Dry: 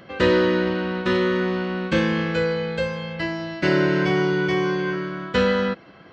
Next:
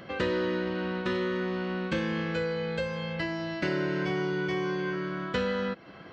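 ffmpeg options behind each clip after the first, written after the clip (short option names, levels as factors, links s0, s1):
-af "acompressor=threshold=0.0282:ratio=2.5"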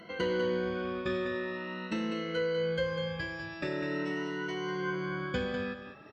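-af "afftfilt=real='re*pow(10,20/40*sin(2*PI*(1.9*log(max(b,1)*sr/1024/100)/log(2)-(0.44)*(pts-256)/sr)))':imag='im*pow(10,20/40*sin(2*PI*(1.9*log(max(b,1)*sr/1024/100)/log(2)-(0.44)*(pts-256)/sr)))':win_size=1024:overlap=0.75,aecho=1:1:198:0.376,volume=0.422"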